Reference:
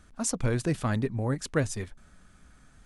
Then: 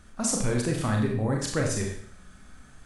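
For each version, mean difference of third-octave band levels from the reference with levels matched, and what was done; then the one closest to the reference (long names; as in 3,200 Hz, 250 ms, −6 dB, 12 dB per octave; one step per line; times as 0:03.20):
5.5 dB: in parallel at −2.5 dB: compressor whose output falls as the input rises −31 dBFS, ratio −1
on the sum: four-comb reverb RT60 0.59 s, combs from 29 ms, DRR 0 dB
level −3.5 dB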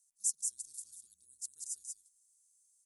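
19.5 dB: inverse Chebyshev high-pass filter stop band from 2,300 Hz, stop band 60 dB
frequency shifter −39 Hz
on a send: single-tap delay 184 ms −3.5 dB
on the sum: level +1 dB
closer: first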